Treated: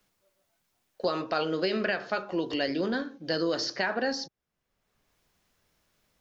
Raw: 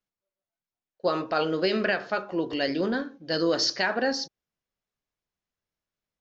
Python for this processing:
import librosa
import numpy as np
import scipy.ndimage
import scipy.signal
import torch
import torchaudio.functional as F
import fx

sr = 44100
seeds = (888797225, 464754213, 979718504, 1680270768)

y = fx.band_squash(x, sr, depth_pct=70)
y = y * 10.0 ** (-3.0 / 20.0)